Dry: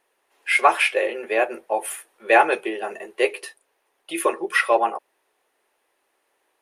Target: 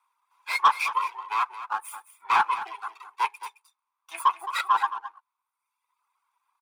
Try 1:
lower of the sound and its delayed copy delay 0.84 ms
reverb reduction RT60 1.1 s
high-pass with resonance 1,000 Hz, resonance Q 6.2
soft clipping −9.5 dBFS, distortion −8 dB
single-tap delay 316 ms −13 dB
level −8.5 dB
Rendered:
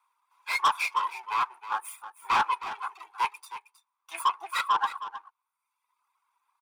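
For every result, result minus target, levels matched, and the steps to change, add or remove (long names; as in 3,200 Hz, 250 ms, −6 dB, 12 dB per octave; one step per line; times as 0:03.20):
echo 99 ms late; soft clipping: distortion +6 dB
change: single-tap delay 217 ms −13 dB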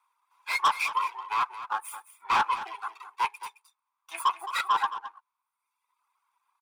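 soft clipping: distortion +6 dB
change: soft clipping −2.5 dBFS, distortion −14 dB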